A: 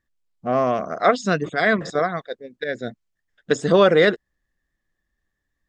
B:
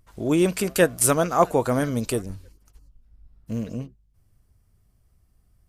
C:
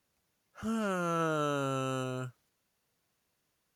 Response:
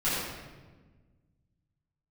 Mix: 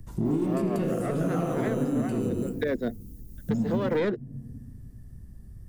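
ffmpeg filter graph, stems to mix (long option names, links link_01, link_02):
-filter_complex "[0:a]highpass=110,aeval=exprs='clip(val(0),-1,0.0631)':channel_layout=same,volume=2dB[link_01];[1:a]lowshelf=frequency=390:gain=9.5,acompressor=threshold=-27dB:ratio=2,volume=22dB,asoftclip=hard,volume=-22dB,volume=-7dB,asplit=3[link_02][link_03][link_04];[link_03]volume=-12dB[link_05];[2:a]aemphasis=mode=production:type=riaa,adelay=250,volume=-5.5dB[link_06];[link_04]apad=whole_len=250591[link_07];[link_01][link_07]sidechaincompress=threshold=-54dB:ratio=8:attack=16:release=106[link_08];[link_02][link_06]amix=inputs=2:normalize=0,bass=frequency=250:gain=12,treble=frequency=4000:gain=13,acompressor=threshold=-34dB:ratio=6,volume=0dB[link_09];[3:a]atrim=start_sample=2205[link_10];[link_05][link_10]afir=irnorm=-1:irlink=0[link_11];[link_08][link_09][link_11]amix=inputs=3:normalize=0,equalizer=frequency=300:width=0.46:gain=11,acrossover=split=120|350|1100|3500[link_12][link_13][link_14][link_15][link_16];[link_12]acompressor=threshold=-40dB:ratio=4[link_17];[link_13]acompressor=threshold=-23dB:ratio=4[link_18];[link_14]acompressor=threshold=-27dB:ratio=4[link_19];[link_15]acompressor=threshold=-34dB:ratio=4[link_20];[link_16]acompressor=threshold=-50dB:ratio=4[link_21];[link_17][link_18][link_19][link_20][link_21]amix=inputs=5:normalize=0,alimiter=limit=-17dB:level=0:latency=1:release=466"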